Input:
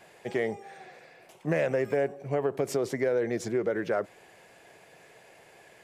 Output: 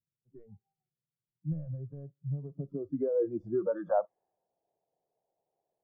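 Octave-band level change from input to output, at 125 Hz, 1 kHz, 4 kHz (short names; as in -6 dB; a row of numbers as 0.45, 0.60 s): 0.0 dB, -3.0 dB, under -35 dB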